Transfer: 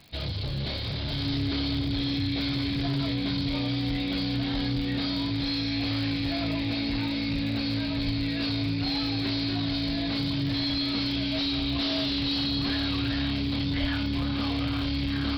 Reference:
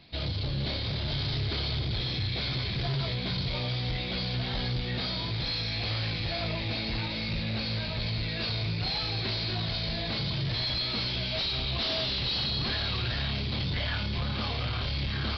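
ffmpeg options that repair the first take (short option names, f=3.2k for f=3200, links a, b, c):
-filter_complex "[0:a]adeclick=t=4,bandreject=f=280:w=30,asplit=3[a][b][c];[a]afade=t=out:st=8.05:d=0.02[d];[b]highpass=f=140:w=0.5412,highpass=f=140:w=1.3066,afade=t=in:st=8.05:d=0.02,afade=t=out:st=8.17:d=0.02[e];[c]afade=t=in:st=8.17:d=0.02[f];[d][e][f]amix=inputs=3:normalize=0,asplit=3[g][h][i];[g]afade=t=out:st=13.8:d=0.02[j];[h]highpass=f=140:w=0.5412,highpass=f=140:w=1.3066,afade=t=in:st=13.8:d=0.02,afade=t=out:st=13.92:d=0.02[k];[i]afade=t=in:st=13.92:d=0.02[l];[j][k][l]amix=inputs=3:normalize=0"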